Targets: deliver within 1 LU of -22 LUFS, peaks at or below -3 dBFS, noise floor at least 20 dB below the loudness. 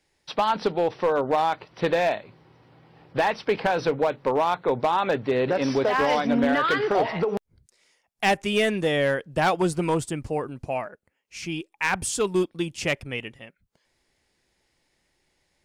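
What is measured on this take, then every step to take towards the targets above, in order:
clipped 1.0%; flat tops at -15.0 dBFS; loudness -24.5 LUFS; peak -15.0 dBFS; loudness target -22.0 LUFS
-> clip repair -15 dBFS; gain +2.5 dB

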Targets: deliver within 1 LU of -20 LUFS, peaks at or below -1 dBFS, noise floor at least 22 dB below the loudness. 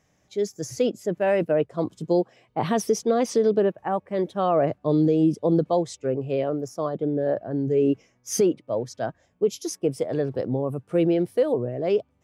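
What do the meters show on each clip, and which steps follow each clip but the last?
loudness -24.5 LUFS; peak -10.5 dBFS; loudness target -20.0 LUFS
-> gain +4.5 dB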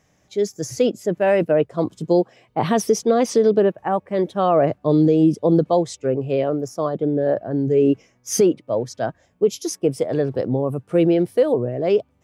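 loudness -20.0 LUFS; peak -6.0 dBFS; noise floor -62 dBFS

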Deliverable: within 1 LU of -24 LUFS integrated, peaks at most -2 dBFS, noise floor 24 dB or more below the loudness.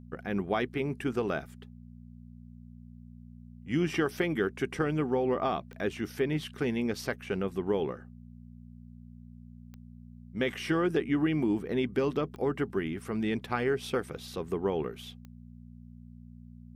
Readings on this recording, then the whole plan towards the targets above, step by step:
clicks 4; hum 60 Hz; harmonics up to 240 Hz; hum level -46 dBFS; loudness -31.5 LUFS; peak -14.5 dBFS; loudness target -24.0 LUFS
-> de-click; de-hum 60 Hz, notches 4; gain +7.5 dB

